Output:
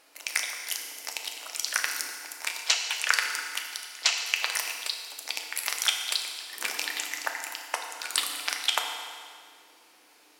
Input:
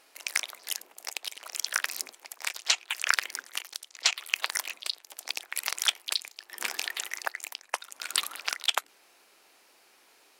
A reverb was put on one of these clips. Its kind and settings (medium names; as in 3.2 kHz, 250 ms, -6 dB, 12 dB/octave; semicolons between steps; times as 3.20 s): FDN reverb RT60 2 s, low-frequency decay 1.25×, high-frequency decay 0.9×, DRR 2 dB